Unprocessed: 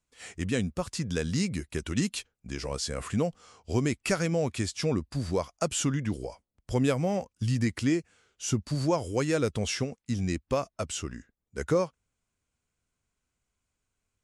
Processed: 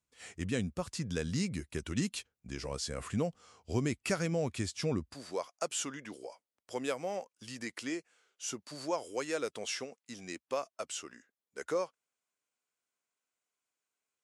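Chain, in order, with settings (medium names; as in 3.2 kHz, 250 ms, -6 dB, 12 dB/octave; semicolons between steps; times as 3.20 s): high-pass 52 Hz 12 dB/octave, from 5.14 s 430 Hz; trim -5 dB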